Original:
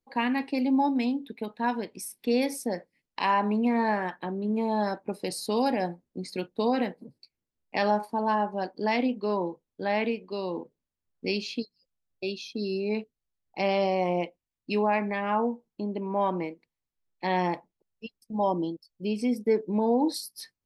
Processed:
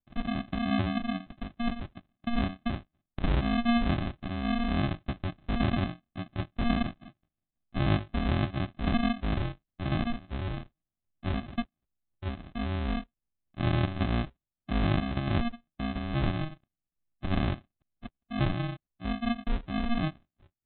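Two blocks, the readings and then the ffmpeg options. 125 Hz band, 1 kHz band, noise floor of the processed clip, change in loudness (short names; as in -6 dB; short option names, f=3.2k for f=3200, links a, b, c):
+10.0 dB, -8.5 dB, under -85 dBFS, -3.0 dB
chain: -af "dynaudnorm=f=470:g=9:m=3dB,aresample=8000,acrusher=samples=17:mix=1:aa=0.000001,aresample=44100,volume=-4dB"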